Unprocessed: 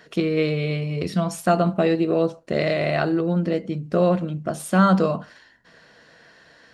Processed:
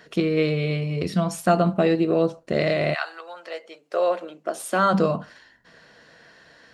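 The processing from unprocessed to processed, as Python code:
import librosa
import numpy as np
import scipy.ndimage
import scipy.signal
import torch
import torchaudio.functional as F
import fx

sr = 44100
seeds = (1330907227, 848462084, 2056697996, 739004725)

y = fx.highpass(x, sr, hz=fx.line((2.93, 980.0), (4.93, 250.0)), slope=24, at=(2.93, 4.93), fade=0.02)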